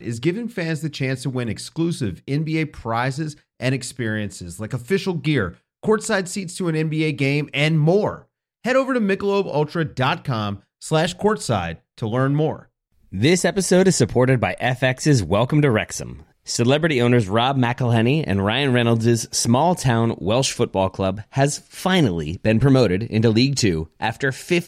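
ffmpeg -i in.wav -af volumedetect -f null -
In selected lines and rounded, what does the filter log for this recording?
mean_volume: -20.2 dB
max_volume: -3.3 dB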